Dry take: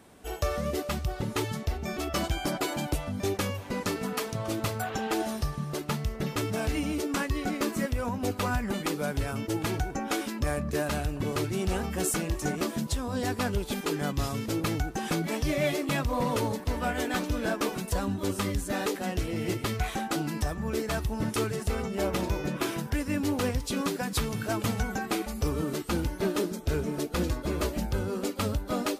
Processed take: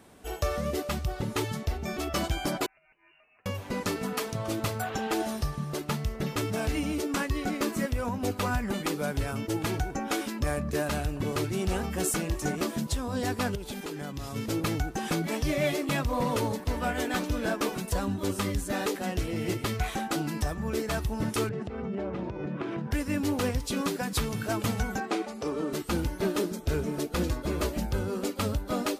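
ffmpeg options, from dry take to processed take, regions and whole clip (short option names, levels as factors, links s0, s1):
-filter_complex "[0:a]asettb=1/sr,asplit=3[s0][s1][s2];[s0]atrim=end=2.664[s3];[s1]atrim=start=2.66:end=3.46,asetpts=PTS-STARTPTS,afade=t=in:d=0.004:c=qsin,afade=t=out:st=0.796:d=0.004:c=qsin,aderivative,acompressor=threshold=0.00251:ratio=20:attack=3.2:release=140:knee=1:detection=peak,lowpass=f=2600:t=q:w=0.5098,lowpass=f=2600:t=q:w=0.6013,lowpass=f=2600:t=q:w=0.9,lowpass=f=2600:t=q:w=2.563,afreqshift=-3000[s4];[s2]atrim=start=3.456[s5];[s3][s4]acrossfade=d=0.004:c1=hsin:c2=qsin[s6];[s6][s5]acrossfade=d=0.004:c1=qsin:c2=hsin,asettb=1/sr,asplit=3[s7][s8][s9];[s7]atrim=end=13.554[s10];[s8]atrim=start=13.55:end=14.36,asetpts=PTS-STARTPTS,afade=t=in:d=0.004:c=qsin,afade=t=out:st=0.806:d=0.004:c=qsin,bandreject=f=1200:w=26,acompressor=threshold=0.0224:ratio=5:attack=3.2:release=140:knee=1:detection=peak[s11];[s9]atrim=start=14.356[s12];[s10][s11]acrossfade=d=0.004:c1=hsin:c2=qsin[s13];[s13][s12]acrossfade=d=0.004:c1=qsin:c2=hsin,asettb=1/sr,asplit=3[s14][s15][s16];[s14]atrim=end=21.494[s17];[s15]atrim=start=21.49:end=22.91,asetpts=PTS-STARTPTS,afade=t=in:d=0.004:c=qsin,afade=t=out:st=1.416:d=0.004:c=qsin,lowshelf=f=440:g=7.5,acompressor=threshold=0.0398:ratio=12:attack=3.2:release=140:knee=1:detection=peak,highpass=110,lowpass=2400[s18];[s16]atrim=start=22.906[s19];[s17][s18]acrossfade=d=0.004:c1=hsin:c2=qsin[s20];[s20][s19]acrossfade=d=0.004:c1=qsin:c2=hsin,asettb=1/sr,asplit=3[s21][s22][s23];[s21]atrim=end=25.004[s24];[s22]atrim=start=25:end=25.73,asetpts=PTS-STARTPTS,afade=t=in:d=0.004:c=qsin,afade=t=out:st=0.726:d=0.004:c=qsin,highpass=310,lowpass=7400,tiltshelf=f=1200:g=3.5[s25];[s23]atrim=start=25.726[s26];[s24][s25]acrossfade=d=0.004:c1=hsin:c2=qsin[s27];[s27][s26]acrossfade=d=0.004:c1=qsin:c2=hsin"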